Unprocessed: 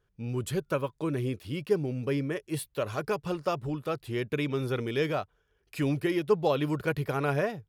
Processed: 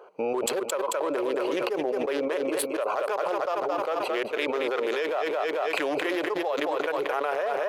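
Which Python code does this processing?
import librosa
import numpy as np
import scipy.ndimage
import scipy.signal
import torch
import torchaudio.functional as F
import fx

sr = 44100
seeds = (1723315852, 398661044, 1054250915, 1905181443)

y = fx.wiener(x, sr, points=25)
y = scipy.signal.sosfilt(scipy.signal.butter(4, 550.0, 'highpass', fs=sr, output='sos'), y)
y = fx.high_shelf(y, sr, hz=2000.0, db=-9.0)
y = fx.echo_feedback(y, sr, ms=221, feedback_pct=38, wet_db=-11.0)
y = fx.env_flatten(y, sr, amount_pct=100)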